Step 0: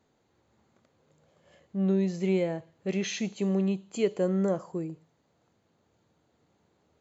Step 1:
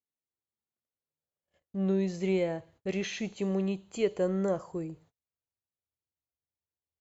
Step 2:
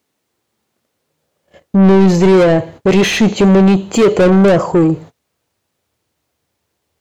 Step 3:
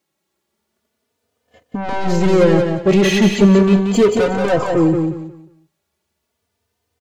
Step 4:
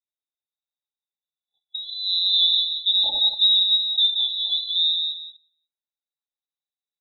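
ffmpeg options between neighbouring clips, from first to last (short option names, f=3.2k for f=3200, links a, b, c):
-filter_complex "[0:a]agate=range=-34dB:threshold=-56dB:ratio=16:detection=peak,asubboost=boost=8.5:cutoff=67,acrossover=split=3100[a][b];[b]alimiter=level_in=10.5dB:limit=-24dB:level=0:latency=1:release=461,volume=-10.5dB[c];[a][c]amix=inputs=2:normalize=0"
-filter_complex "[0:a]lowshelf=f=430:g=11.5,asplit=2[a][b];[b]highpass=f=720:p=1,volume=29dB,asoftclip=type=tanh:threshold=-10dB[c];[a][c]amix=inputs=2:normalize=0,lowpass=f=6.3k:p=1,volume=-6dB,tiltshelf=f=740:g=3,volume=6.5dB"
-filter_complex "[0:a]asplit=2[a][b];[b]aecho=0:1:180|360|540|720:0.531|0.143|0.0387|0.0104[c];[a][c]amix=inputs=2:normalize=0,asplit=2[d][e];[e]adelay=3.2,afreqshift=0.37[f];[d][f]amix=inputs=2:normalize=1,volume=-1.5dB"
-af "afwtdn=0.0562,afftfilt=real='re*(1-between(b*sr/4096,580,3100))':imag='im*(1-between(b*sr/4096,580,3100))':win_size=4096:overlap=0.75,lowpass=f=3.4k:t=q:w=0.5098,lowpass=f=3.4k:t=q:w=0.6013,lowpass=f=3.4k:t=q:w=0.9,lowpass=f=3.4k:t=q:w=2.563,afreqshift=-4000,volume=-7.5dB"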